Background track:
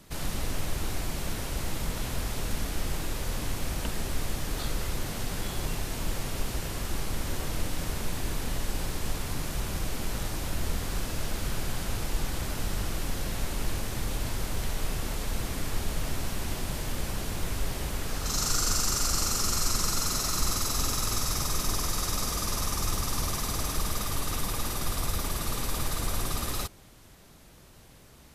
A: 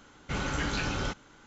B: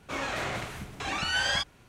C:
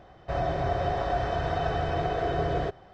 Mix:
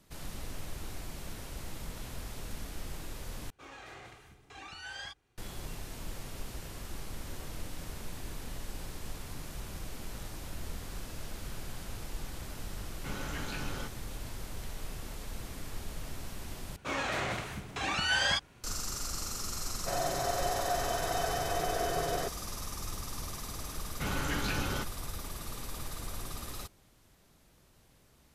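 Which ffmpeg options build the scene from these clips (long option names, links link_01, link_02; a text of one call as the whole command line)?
ffmpeg -i bed.wav -i cue0.wav -i cue1.wav -i cue2.wav -filter_complex "[2:a]asplit=2[link_01][link_02];[1:a]asplit=2[link_03][link_04];[0:a]volume=-10dB[link_05];[link_01]aecho=1:1:2.5:0.43[link_06];[3:a]aemphasis=mode=production:type=bsi[link_07];[link_05]asplit=3[link_08][link_09][link_10];[link_08]atrim=end=3.504[link_11];[link_06]atrim=end=1.88,asetpts=PTS-STARTPTS,volume=-17dB[link_12];[link_09]atrim=start=5.376:end=16.764[link_13];[link_02]atrim=end=1.88,asetpts=PTS-STARTPTS,volume=-1dB[link_14];[link_10]atrim=start=18.636[link_15];[link_03]atrim=end=1.46,asetpts=PTS-STARTPTS,volume=-8.5dB,afade=type=in:duration=0.004:curve=hsin,afade=type=out:start_time=1.456:duration=0.004:curve=hsin,adelay=12750[link_16];[link_07]atrim=end=2.93,asetpts=PTS-STARTPTS,volume=-3.5dB,afade=type=in:duration=0.004:curve=hsin,afade=type=out:start_time=2.926:duration=0.004:curve=hsin,adelay=19580[link_17];[link_04]atrim=end=1.46,asetpts=PTS-STARTPTS,volume=-2.5dB,afade=type=in:duration=0.004:curve=hsin,afade=type=out:start_time=1.456:duration=0.004:curve=hsin,adelay=23710[link_18];[link_11][link_12]acrossfade=duration=0.004:curve1=hsin:curve2=hsin[link_19];[link_19][link_13]acrossfade=duration=0.004:curve1=hsin:curve2=hsin[link_20];[link_20][link_14]acrossfade=duration=0.004:curve1=hsin:curve2=hsin[link_21];[link_21][link_15]acrossfade=duration=0.004:curve1=hsin:curve2=hsin[link_22];[link_22][link_16][link_17][link_18]amix=inputs=4:normalize=0" out.wav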